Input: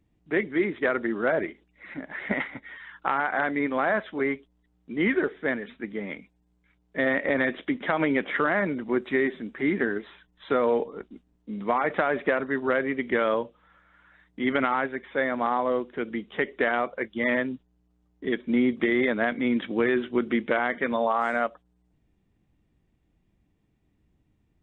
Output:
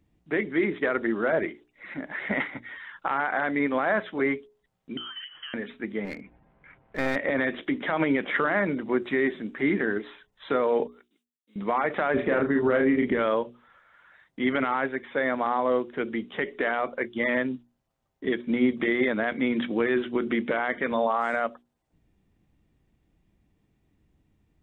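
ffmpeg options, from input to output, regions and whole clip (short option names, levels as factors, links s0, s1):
-filter_complex "[0:a]asettb=1/sr,asplit=3[s0][s1][s2];[s0]atrim=end=4.974[s3];[s1]atrim=start=4.97:end=5.54,asetpts=PTS-STARTPTS,afade=t=in:d=0.004:c=qsin,afade=t=out:st=0.566:d=0.004:c=qsin,acompressor=threshold=0.0141:ratio=16:attack=3.2:release=140:knee=1:detection=peak,lowpass=f=2900:t=q:w=0.5098,lowpass=f=2900:t=q:w=0.6013,lowpass=f=2900:t=q:w=0.9,lowpass=f=2900:t=q:w=2.563,afreqshift=-3400[s4];[s2]atrim=start=5.536[s5];[s3][s4]acrossfade=d=0.004:c1=hsin:c2=qsin[s6];[s6][s5]acrossfade=d=0.004:c1=qsin:c2=hsin,asettb=1/sr,asplit=3[s7][s8][s9];[s7]atrim=end=6.054[s10];[s8]atrim=start=6.05:end=7.16,asetpts=PTS-STARTPTS,afade=t=in:d=0.004:c=qsin,afade=t=out:st=1.106:d=0.004:c=qsin,lowpass=f=2200:w=0.5412,lowpass=f=2200:w=1.3066,acompressor=mode=upward:threshold=0.02:ratio=2.5:attack=3.2:release=140:knee=2.83:detection=peak,aeval=exprs='clip(val(0),-1,0.0141)':c=same[s11];[s9]atrim=start=7.156[s12];[s10][s11]acrossfade=d=0.004:c1=hsin:c2=qsin[s13];[s13][s12]acrossfade=d=0.004:c1=qsin:c2=hsin,asettb=1/sr,asplit=3[s14][s15][s16];[s14]atrim=end=10.874[s17];[s15]atrim=start=10.87:end=11.56,asetpts=PTS-STARTPTS,afade=t=in:d=0.004:c=qsin,afade=t=out:st=0.686:d=0.004:c=qsin,agate=range=0.0224:threshold=0.00112:ratio=3:release=100:detection=peak,aderivative[s18];[s16]atrim=start=11.556[s19];[s17][s18]acrossfade=d=0.004:c1=hsin:c2=qsin[s20];[s20][s19]acrossfade=d=0.004:c1=qsin:c2=hsin,asettb=1/sr,asplit=3[s21][s22][s23];[s21]atrim=end=12.144[s24];[s22]atrim=start=12.14:end=13.18,asetpts=PTS-STARTPTS,afade=t=in:d=0.004:c=qsin,afade=t=out:st=1.036:d=0.004:c=qsin,lowshelf=f=390:g=10.5,asplit=2[s25][s26];[s26]adelay=33,volume=0.562[s27];[s25][s27]amix=inputs=2:normalize=0,atrim=end_sample=45864[s28];[s23]atrim=start=13.176[s29];[s24][s28]acrossfade=d=0.004:c1=hsin:c2=qsin[s30];[s30][s29]acrossfade=d=0.004:c1=qsin:c2=hsin,alimiter=limit=0.158:level=0:latency=1:release=48,bandreject=f=60:t=h:w=6,bandreject=f=120:t=h:w=6,bandreject=f=180:t=h:w=6,bandreject=f=240:t=h:w=6,bandreject=f=300:t=h:w=6,bandreject=f=360:t=h:w=6,bandreject=f=420:t=h:w=6,volume=1.26"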